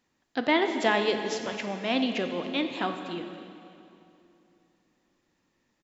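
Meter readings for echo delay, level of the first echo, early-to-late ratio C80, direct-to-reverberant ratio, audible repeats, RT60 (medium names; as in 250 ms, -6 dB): 277 ms, -18.5 dB, 7.5 dB, 5.5 dB, 1, 2.8 s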